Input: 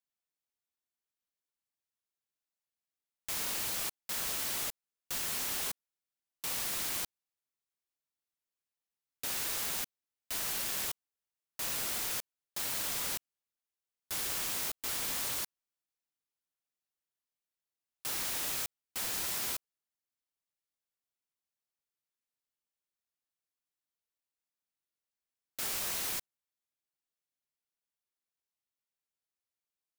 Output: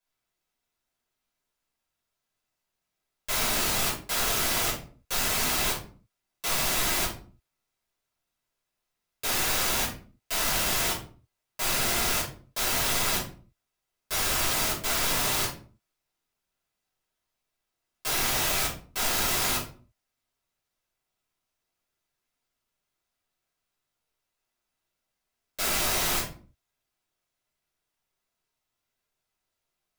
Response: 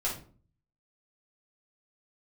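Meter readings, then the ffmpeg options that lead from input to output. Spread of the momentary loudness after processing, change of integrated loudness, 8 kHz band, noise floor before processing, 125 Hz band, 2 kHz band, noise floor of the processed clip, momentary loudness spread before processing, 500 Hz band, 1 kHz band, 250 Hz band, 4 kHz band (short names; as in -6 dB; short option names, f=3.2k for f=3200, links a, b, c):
9 LU, +8.0 dB, +8.0 dB, under -85 dBFS, +16.0 dB, +12.0 dB, -84 dBFS, 8 LU, +14.0 dB, +13.5 dB, +13.5 dB, +10.0 dB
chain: -filter_complex "[0:a]highshelf=f=5.6k:g=-5.5[a];[1:a]atrim=start_sample=2205,afade=t=out:st=0.4:d=0.01,atrim=end_sample=18081[b];[a][b]afir=irnorm=-1:irlink=0,volume=7.5dB"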